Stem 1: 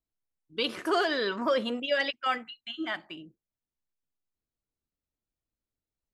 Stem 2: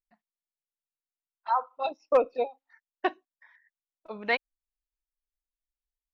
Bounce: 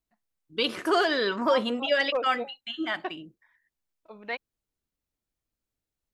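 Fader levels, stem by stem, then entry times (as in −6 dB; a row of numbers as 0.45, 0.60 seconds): +3.0, −7.0 decibels; 0.00, 0.00 seconds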